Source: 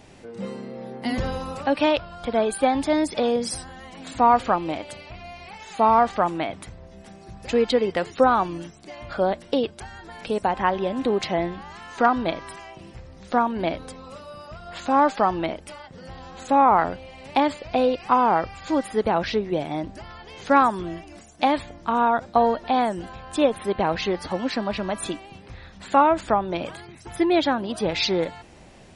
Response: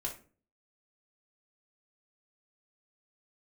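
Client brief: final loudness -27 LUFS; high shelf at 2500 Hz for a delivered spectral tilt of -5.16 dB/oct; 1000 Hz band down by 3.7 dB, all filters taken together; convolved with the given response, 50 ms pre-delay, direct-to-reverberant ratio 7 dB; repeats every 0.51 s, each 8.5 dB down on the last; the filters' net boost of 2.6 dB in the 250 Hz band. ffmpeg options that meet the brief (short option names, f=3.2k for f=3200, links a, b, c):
-filter_complex "[0:a]equalizer=f=250:t=o:g=3.5,equalizer=f=1k:t=o:g=-4,highshelf=f=2.5k:g=-7.5,aecho=1:1:510|1020|1530|2040:0.376|0.143|0.0543|0.0206,asplit=2[a][b];[1:a]atrim=start_sample=2205,adelay=50[c];[b][c]afir=irnorm=-1:irlink=0,volume=-8dB[d];[a][d]amix=inputs=2:normalize=0,volume=-3.5dB"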